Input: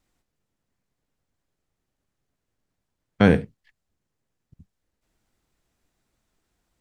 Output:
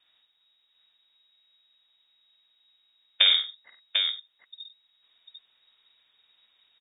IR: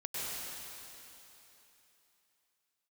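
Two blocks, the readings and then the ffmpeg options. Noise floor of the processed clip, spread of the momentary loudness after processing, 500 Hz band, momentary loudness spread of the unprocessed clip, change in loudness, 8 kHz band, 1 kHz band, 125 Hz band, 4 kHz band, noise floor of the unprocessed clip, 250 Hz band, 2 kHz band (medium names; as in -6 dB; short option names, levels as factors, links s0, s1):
-70 dBFS, 16 LU, -24.5 dB, 4 LU, -3.0 dB, no reading, -13.0 dB, under -40 dB, +21.0 dB, -81 dBFS, under -40 dB, -2.0 dB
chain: -filter_complex "[0:a]acompressor=threshold=0.0398:ratio=3,asplit=2[s0][s1];[s1]aecho=0:1:51|95|746:0.501|0.188|0.531[s2];[s0][s2]amix=inputs=2:normalize=0,lowpass=f=3200:t=q:w=0.5098,lowpass=f=3200:t=q:w=0.6013,lowpass=f=3200:t=q:w=0.9,lowpass=f=3200:t=q:w=2.563,afreqshift=-3800,volume=2.24"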